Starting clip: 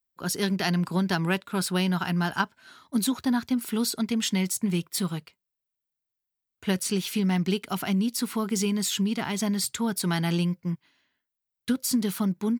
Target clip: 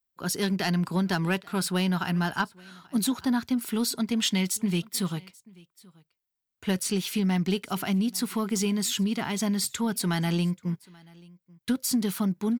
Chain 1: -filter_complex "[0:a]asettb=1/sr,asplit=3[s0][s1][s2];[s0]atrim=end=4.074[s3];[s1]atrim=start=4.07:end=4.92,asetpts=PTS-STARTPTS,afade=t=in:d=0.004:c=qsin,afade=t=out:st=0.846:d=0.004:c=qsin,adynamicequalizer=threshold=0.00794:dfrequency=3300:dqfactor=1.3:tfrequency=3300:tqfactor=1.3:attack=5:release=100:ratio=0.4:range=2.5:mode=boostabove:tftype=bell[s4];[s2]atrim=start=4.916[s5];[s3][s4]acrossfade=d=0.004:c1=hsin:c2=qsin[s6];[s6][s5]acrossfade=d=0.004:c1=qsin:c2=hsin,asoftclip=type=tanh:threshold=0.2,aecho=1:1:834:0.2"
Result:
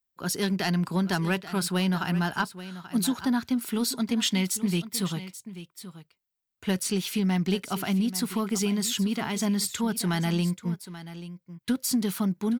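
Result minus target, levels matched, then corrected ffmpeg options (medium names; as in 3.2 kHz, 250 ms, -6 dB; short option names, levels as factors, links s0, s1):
echo-to-direct +11 dB
-filter_complex "[0:a]asettb=1/sr,asplit=3[s0][s1][s2];[s0]atrim=end=4.074[s3];[s1]atrim=start=4.07:end=4.92,asetpts=PTS-STARTPTS,afade=t=in:d=0.004:c=qsin,afade=t=out:st=0.846:d=0.004:c=qsin,adynamicequalizer=threshold=0.00794:dfrequency=3300:dqfactor=1.3:tfrequency=3300:tqfactor=1.3:attack=5:release=100:ratio=0.4:range=2.5:mode=boostabove:tftype=bell[s4];[s2]atrim=start=4.916[s5];[s3][s4]acrossfade=d=0.004:c1=hsin:c2=qsin[s6];[s6][s5]acrossfade=d=0.004:c1=qsin:c2=hsin,asoftclip=type=tanh:threshold=0.2,aecho=1:1:834:0.0562"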